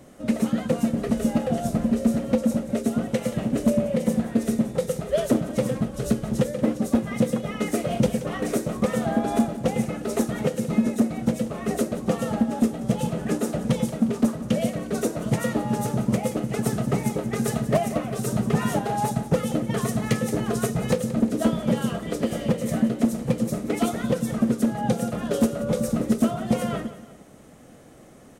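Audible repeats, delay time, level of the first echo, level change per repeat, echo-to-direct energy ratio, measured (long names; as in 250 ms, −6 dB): 2, 178 ms, −15.0 dB, −7.5 dB, −14.5 dB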